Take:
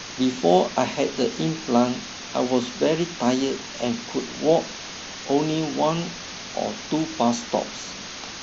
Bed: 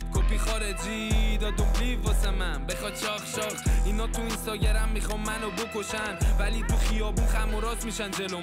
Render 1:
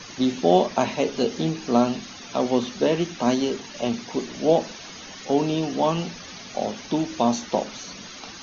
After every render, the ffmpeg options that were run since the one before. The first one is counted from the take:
-af "afftdn=nr=12:nf=-37"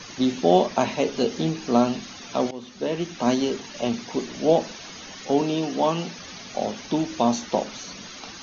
-filter_complex "[0:a]asettb=1/sr,asplit=3[s0][s1][s2];[s0]atrim=end=5.414[s3];[s1]atrim=start=5.41:end=6.19,asetpts=PTS-STARTPTS,afade=t=in:d=0.004:c=qsin,afade=t=out:st=0.776:d=0.004:c=qsin,highpass=160[s4];[s2]atrim=start=6.186[s5];[s3][s4]acrossfade=d=0.004:c1=hsin:c2=qsin[s6];[s6][s5]acrossfade=d=0.004:c1=qsin:c2=hsin,asplit=2[s7][s8];[s7]atrim=end=2.51,asetpts=PTS-STARTPTS,afade=t=out:st=2.506:d=0.004:c=hsin:silence=0.112202[s9];[s8]atrim=start=2.51,asetpts=PTS-STARTPTS,afade=t=in:d=0.79:silence=0.112202[s10];[s9][s10]concat=n=2:v=0:a=1"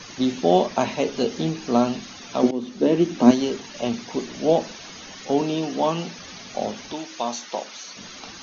-filter_complex "[0:a]asettb=1/sr,asplit=3[s0][s1][s2];[s0]atrim=end=2.434[s3];[s1]atrim=start=2.43:end=3.31,asetpts=PTS-STARTPTS,afade=t=in:d=0.004:c=qsin,afade=t=out:st=0.876:d=0.004:c=qsin,equalizer=f=290:w=0.91:g=11.5[s4];[s2]atrim=start=3.306[s5];[s3][s4]acrossfade=d=0.004:c1=hsin:c2=qsin[s6];[s6][s5]acrossfade=d=0.004:c1=qsin:c2=hsin,asettb=1/sr,asplit=3[s7][s8][s9];[s7]atrim=end=6.924[s10];[s8]atrim=start=6.92:end=7.97,asetpts=PTS-STARTPTS,afade=t=in:d=0.004:c=qsin,afade=t=out:st=1.046:d=0.004:c=qsin,highpass=f=920:p=1[s11];[s9]atrim=start=7.966[s12];[s10][s11]acrossfade=d=0.004:c1=hsin:c2=qsin[s13];[s13][s12]acrossfade=d=0.004:c1=qsin:c2=hsin"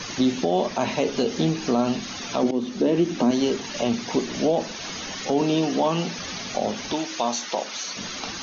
-filter_complex "[0:a]asplit=2[s0][s1];[s1]acompressor=threshold=0.0316:ratio=6,volume=1.19[s2];[s0][s2]amix=inputs=2:normalize=0,alimiter=limit=0.266:level=0:latency=1:release=57"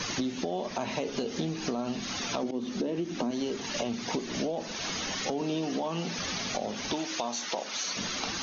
-af "alimiter=limit=0.178:level=0:latency=1:release=330,acompressor=threshold=0.0398:ratio=6"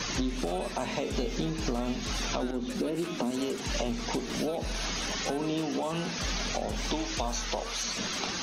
-filter_complex "[1:a]volume=0.237[s0];[0:a][s0]amix=inputs=2:normalize=0"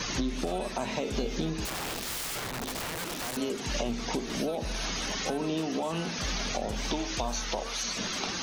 -filter_complex "[0:a]asettb=1/sr,asplit=3[s0][s1][s2];[s0]atrim=end=1.654[s3];[s1]atrim=start=1.65:end=3.37,asetpts=PTS-STARTPTS,afade=t=in:d=0.004:c=qsin,afade=t=out:st=1.716:d=0.004:c=qsin,aeval=exprs='(mod(31.6*val(0)+1,2)-1)/31.6':c=same[s4];[s2]atrim=start=3.366[s5];[s3][s4]acrossfade=d=0.004:c1=hsin:c2=qsin[s6];[s6][s5]acrossfade=d=0.004:c1=qsin:c2=hsin"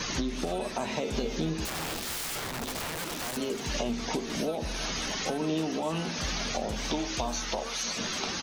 -filter_complex "[0:a]asplit=2[s0][s1];[s1]adelay=13,volume=0.251[s2];[s0][s2]amix=inputs=2:normalize=0,aecho=1:1:327:0.133"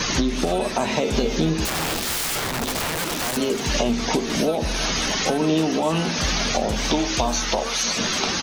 -af "volume=2.99"

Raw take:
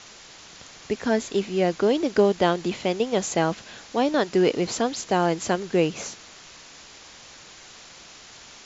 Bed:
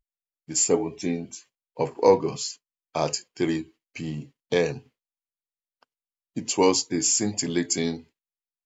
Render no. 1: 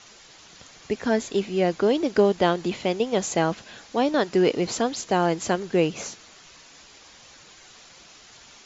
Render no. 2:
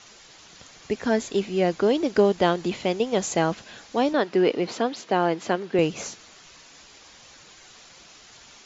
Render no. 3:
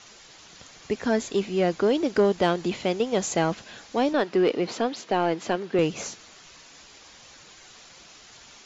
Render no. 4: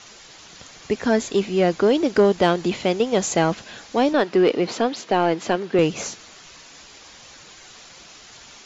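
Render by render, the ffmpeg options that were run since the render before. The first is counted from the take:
-af "afftdn=nr=6:nf=-47"
-filter_complex "[0:a]asettb=1/sr,asplit=3[s0][s1][s2];[s0]atrim=end=4.134[s3];[s1]atrim=start=4.13:end=5.79,asetpts=PTS-STARTPTS,afade=t=in:d=0.004:c=qsin,afade=t=out:st=1.656:d=0.004:c=qsin,highpass=190,lowpass=4000[s4];[s2]atrim=start=5.786[s5];[s3][s4]acrossfade=d=0.004:c1=hsin:c2=qsin[s6];[s6][s5]acrossfade=d=0.004:c1=qsin:c2=hsin"
-af "asoftclip=type=tanh:threshold=0.266"
-af "volume=1.68"

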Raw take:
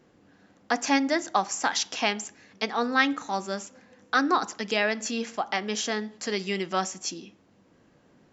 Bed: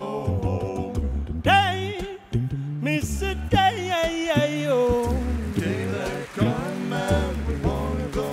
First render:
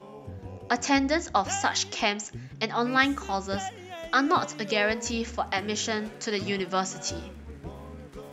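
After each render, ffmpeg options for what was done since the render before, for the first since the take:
-filter_complex "[1:a]volume=0.15[s0];[0:a][s0]amix=inputs=2:normalize=0"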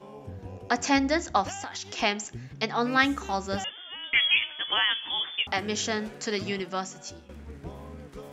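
-filter_complex "[0:a]asettb=1/sr,asplit=3[s0][s1][s2];[s0]atrim=end=1.494[s3];[s1]atrim=start=1.49:end=1.98,asetpts=PTS-STARTPTS,afade=t=in:d=0.004:c=qsin,afade=t=out:st=0.486:d=0.004:c=qsin,acompressor=threshold=0.0224:ratio=6:attack=3.2:release=140:knee=1:detection=peak[s4];[s2]atrim=start=1.976[s5];[s3][s4]acrossfade=d=0.004:c1=hsin:c2=qsin[s6];[s6][s5]acrossfade=d=0.004:c1=qsin:c2=hsin,asettb=1/sr,asplit=3[s7][s8][s9];[s7]atrim=end=3.644[s10];[s8]atrim=start=3.64:end=5.47,asetpts=PTS-STARTPTS,afade=t=in:d=0.004:c=qsin,afade=t=out:st=1.826:d=0.004:c=qsin,lowpass=f=3100:t=q:w=0.5098,lowpass=f=3100:t=q:w=0.6013,lowpass=f=3100:t=q:w=0.9,lowpass=f=3100:t=q:w=2.563,afreqshift=-3600[s11];[s9]atrim=start=5.466[s12];[s10][s11]acrossfade=d=0.004:c1=hsin:c2=qsin[s13];[s13][s12]acrossfade=d=0.004:c1=qsin:c2=hsin,asplit=2[s14][s15];[s14]atrim=end=7.29,asetpts=PTS-STARTPTS,afade=t=out:st=6.28:d=1.01:silence=0.188365[s16];[s15]atrim=start=7.29,asetpts=PTS-STARTPTS,afade=t=in:d=0.004:c=hsin:silence=0.188365[s17];[s16][s17]concat=n=2:v=0:a=1"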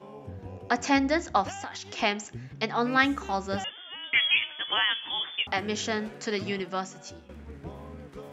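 -af "highpass=57,bass=f=250:g=0,treble=f=4000:g=-5"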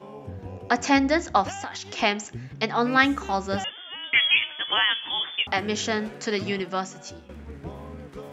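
-af "volume=1.5"

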